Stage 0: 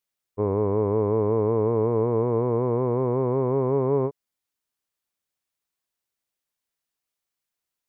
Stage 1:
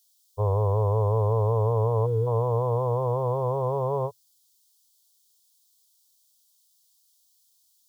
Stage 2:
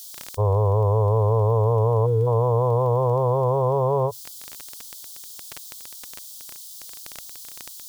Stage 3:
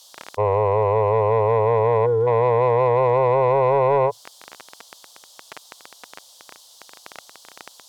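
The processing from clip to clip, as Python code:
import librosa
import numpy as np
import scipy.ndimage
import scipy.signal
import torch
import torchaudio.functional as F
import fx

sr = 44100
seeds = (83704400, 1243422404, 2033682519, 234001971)

y1 = fx.spec_box(x, sr, start_s=2.06, length_s=0.21, low_hz=500.0, high_hz=1300.0, gain_db=-21)
y1 = fx.curve_eq(y1, sr, hz=(110.0, 190.0, 310.0, 510.0, 1000.0, 2100.0, 3200.0, 4700.0), db=(0, -23, -28, -4, -3, -29, 9, 15))
y1 = F.gain(torch.from_numpy(y1), 6.0).numpy()
y2 = fx.dmg_crackle(y1, sr, seeds[0], per_s=14.0, level_db=-41.0)
y2 = fx.env_flatten(y2, sr, amount_pct=50)
y2 = F.gain(torch.from_numpy(y2), 3.5).numpy()
y3 = fx.bandpass_q(y2, sr, hz=890.0, q=0.61)
y3 = 10.0 ** (-19.0 / 20.0) * np.tanh(y3 / 10.0 ** (-19.0 / 20.0))
y3 = F.gain(torch.from_numpy(y3), 8.0).numpy()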